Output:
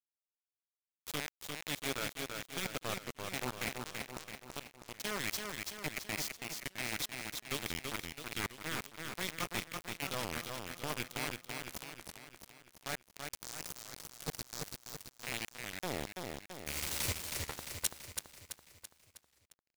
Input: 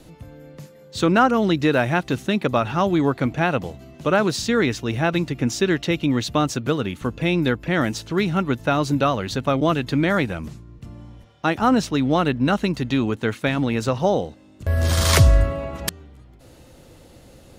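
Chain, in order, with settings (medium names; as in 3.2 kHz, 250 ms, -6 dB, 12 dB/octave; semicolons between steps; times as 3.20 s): rattle on loud lows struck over -20 dBFS, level -12 dBFS; pre-emphasis filter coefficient 0.8; time-frequency box 11.73–13.55 s, 200–4800 Hz -25 dB; dynamic bell 1.2 kHz, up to -3 dB, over -51 dBFS, Q 6.9; reverse; compression 5:1, threshold -46 dBFS, peak gain reduction 23.5 dB; reverse; wide varispeed 0.89×; square tremolo 1.2 Hz, depth 60%, duty 55%; bit crusher 7-bit; on a send: feedback delay 333 ms, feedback 53%, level -4.5 dB; on the sum: crackling interface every 0.82 s, samples 512, repeat, from 0.63 s; warped record 33 1/3 rpm, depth 160 cents; trim +8.5 dB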